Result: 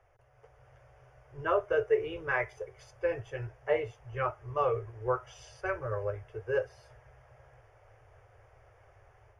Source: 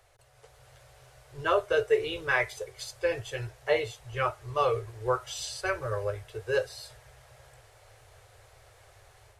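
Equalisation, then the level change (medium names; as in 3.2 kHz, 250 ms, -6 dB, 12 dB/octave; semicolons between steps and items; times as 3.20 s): boxcar filter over 11 samples; -2.0 dB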